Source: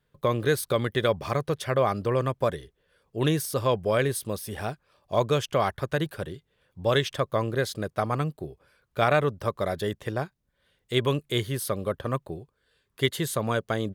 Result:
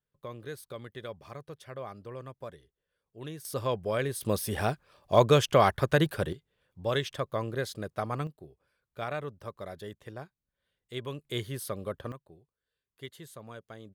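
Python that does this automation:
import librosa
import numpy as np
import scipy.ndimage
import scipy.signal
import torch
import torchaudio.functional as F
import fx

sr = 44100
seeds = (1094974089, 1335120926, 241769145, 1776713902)

y = fx.gain(x, sr, db=fx.steps((0.0, -17.0), (3.45, -6.0), (4.21, 3.0), (6.33, -6.0), (8.27, -13.0), (11.25, -7.0), (12.12, -19.0)))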